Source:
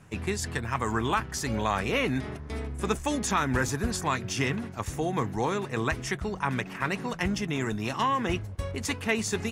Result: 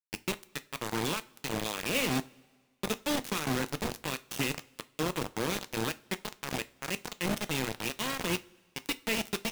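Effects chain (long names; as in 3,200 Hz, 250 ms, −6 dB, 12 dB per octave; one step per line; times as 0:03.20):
flat-topped bell 1,200 Hz −10.5 dB
steady tone 490 Hz −49 dBFS
loudspeaker in its box 220–5,600 Hz, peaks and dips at 440 Hz −7 dB, 740 Hz −8 dB, 4,800 Hz −9 dB
bit reduction 5 bits
coupled-rooms reverb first 0.25 s, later 1.6 s, from −20 dB, DRR 11.5 dB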